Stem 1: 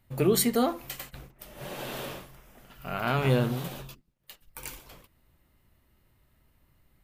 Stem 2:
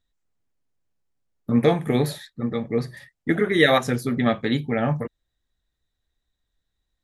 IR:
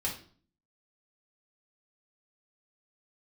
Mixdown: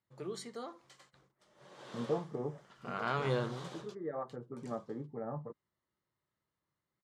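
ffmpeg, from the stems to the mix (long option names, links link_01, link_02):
-filter_complex "[0:a]volume=-5.5dB,afade=type=in:start_time=1.71:duration=0.65:silence=0.281838,afade=type=out:start_time=3.83:duration=0.66:silence=0.298538,asplit=2[link_01][link_02];[1:a]lowpass=frequency=1100:width=0.5412,lowpass=frequency=1100:width=1.3066,adelay=450,volume=-14dB[link_03];[link_02]apad=whole_len=329874[link_04];[link_03][link_04]sidechaincompress=threshold=-35dB:ratio=8:attack=12:release=1480[link_05];[link_01][link_05]amix=inputs=2:normalize=0,highpass=170,equalizer=frequency=250:width_type=q:width=4:gain=-8,equalizer=frequency=690:width_type=q:width=4:gain=-4,equalizer=frequency=1100:width_type=q:width=4:gain=4,equalizer=frequency=2600:width_type=q:width=4:gain=-9,lowpass=frequency=7500:width=0.5412,lowpass=frequency=7500:width=1.3066"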